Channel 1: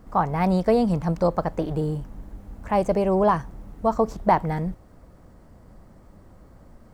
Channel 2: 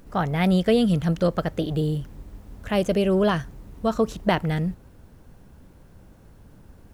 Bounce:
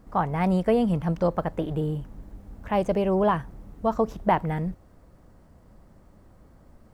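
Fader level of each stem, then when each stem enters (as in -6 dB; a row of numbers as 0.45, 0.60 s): -4.5, -13.5 dB; 0.00, 0.00 s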